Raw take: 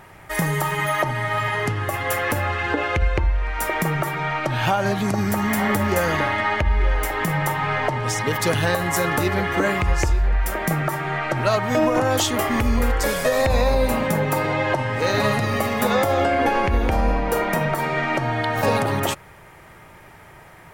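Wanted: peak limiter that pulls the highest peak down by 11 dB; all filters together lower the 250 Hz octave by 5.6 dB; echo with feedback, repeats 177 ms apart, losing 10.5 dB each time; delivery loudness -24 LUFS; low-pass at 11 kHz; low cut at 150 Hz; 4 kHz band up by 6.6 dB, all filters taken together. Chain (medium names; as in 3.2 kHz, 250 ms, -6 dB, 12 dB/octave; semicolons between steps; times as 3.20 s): high-pass 150 Hz; low-pass 11 kHz; peaking EQ 250 Hz -6.5 dB; peaking EQ 4 kHz +8.5 dB; peak limiter -15 dBFS; feedback delay 177 ms, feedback 30%, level -10.5 dB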